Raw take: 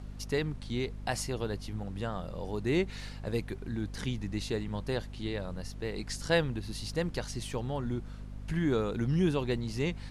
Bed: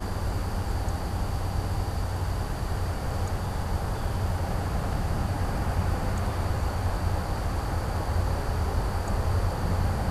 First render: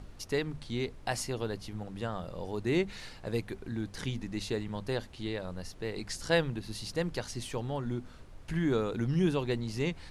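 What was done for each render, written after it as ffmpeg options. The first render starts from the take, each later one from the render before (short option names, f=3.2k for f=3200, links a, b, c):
-af "bandreject=f=50:t=h:w=6,bandreject=f=100:t=h:w=6,bandreject=f=150:t=h:w=6,bandreject=f=200:t=h:w=6,bandreject=f=250:t=h:w=6"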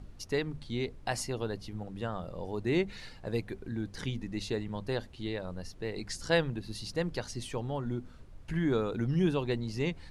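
-af "afftdn=nr=6:nf=-50"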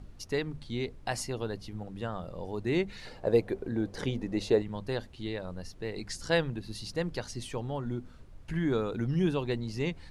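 -filter_complex "[0:a]asettb=1/sr,asplit=3[a][b][c];[a]atrim=end=3.054[d];[b]atrim=start=3.05:end=4.62,asetpts=PTS-STARTPTS,afade=t=in:d=0.004:c=qsin,afade=t=out:st=1.566:d=0.004:c=qsin,equalizer=f=540:w=0.82:g=12[e];[c]atrim=start=4.616[f];[d][e]acrossfade=d=0.004:c1=hsin:c2=qsin[g];[g][f]acrossfade=d=0.004:c1=qsin:c2=hsin"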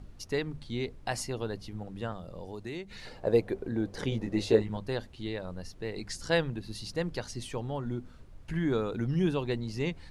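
-filter_complex "[0:a]asettb=1/sr,asplit=3[a][b][c];[a]atrim=end=2.124[d];[b]atrim=start=2.12:end=2.91,asetpts=PTS-STARTPTS,afade=t=in:d=0.004:c=qsin,afade=t=out:st=0.786:d=0.004:c=qsin,acrossover=split=560|3300[e][f][g];[e]acompressor=threshold=-40dB:ratio=4[h];[f]acompressor=threshold=-48dB:ratio=4[i];[g]acompressor=threshold=-50dB:ratio=4[j];[h][i][j]amix=inputs=3:normalize=0[k];[c]atrim=start=2.906[l];[d][k]acrossfade=d=0.004:c1=hsin:c2=qsin[m];[m][l]acrossfade=d=0.004:c1=qsin:c2=hsin,asettb=1/sr,asplit=3[n][o][p];[n]atrim=end=4.104[q];[o]atrim=start=4.1:end=4.77,asetpts=PTS-STARTPTS,afade=t=in:d=0.004:c=qsin,afade=t=out:st=0.666:d=0.004:c=qsin,asplit=2[r][s];[s]adelay=18,volume=-3dB[t];[r][t]amix=inputs=2:normalize=0,atrim=end_sample=29547[u];[p]atrim=start=4.766[v];[q][u]acrossfade=d=0.004:c1=hsin:c2=qsin[w];[w][v]acrossfade=d=0.004:c1=qsin:c2=hsin"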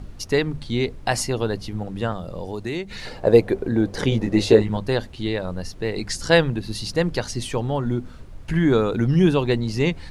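-af "volume=11dB,alimiter=limit=-2dB:level=0:latency=1"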